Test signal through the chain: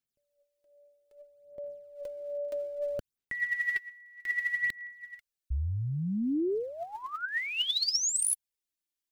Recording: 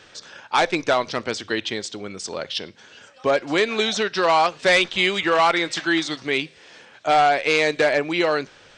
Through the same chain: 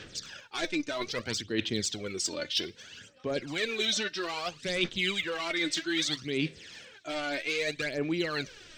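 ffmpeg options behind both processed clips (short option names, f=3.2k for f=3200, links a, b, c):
-af "aphaser=in_gain=1:out_gain=1:delay=3.4:decay=0.65:speed=0.62:type=sinusoidal,areverse,acompressor=threshold=-24dB:ratio=6,areverse,equalizer=f=870:w=0.83:g=-12.5"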